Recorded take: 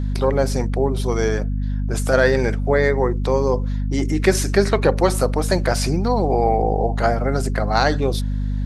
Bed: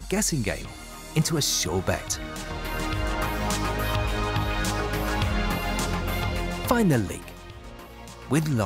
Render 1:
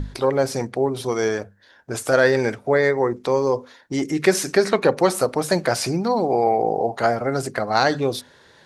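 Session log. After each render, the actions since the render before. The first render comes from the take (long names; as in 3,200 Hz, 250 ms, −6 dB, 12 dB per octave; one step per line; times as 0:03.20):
mains-hum notches 50/100/150/200/250 Hz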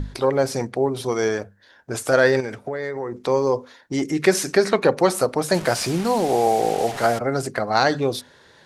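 0:02.40–0:03.26: downward compressor, threshold −24 dBFS
0:05.54–0:07.19: linear delta modulator 64 kbit/s, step −26 dBFS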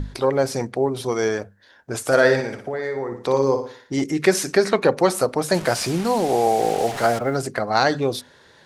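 0:02.01–0:04.04: flutter between parallel walls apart 10.1 metres, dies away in 0.47 s
0:06.59–0:07.36: mu-law and A-law mismatch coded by mu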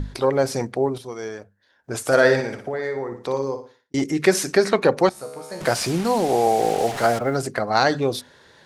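0:00.61–0:02.21: duck −10 dB, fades 0.37 s logarithmic
0:02.89–0:03.94: fade out
0:05.09–0:05.61: tuned comb filter 70 Hz, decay 1.4 s, mix 90%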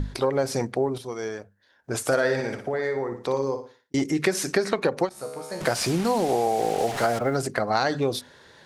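downward compressor 5 to 1, threshold −19 dBFS, peak gain reduction 8.5 dB
every ending faded ahead of time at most 400 dB per second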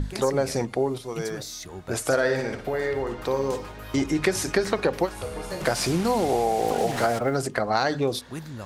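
mix in bed −13 dB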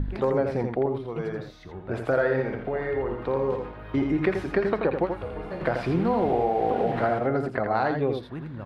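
high-frequency loss of the air 490 metres
single-tap delay 83 ms −6 dB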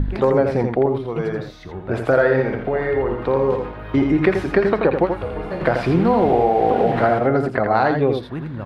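level +7.5 dB
brickwall limiter −3 dBFS, peak gain reduction 1 dB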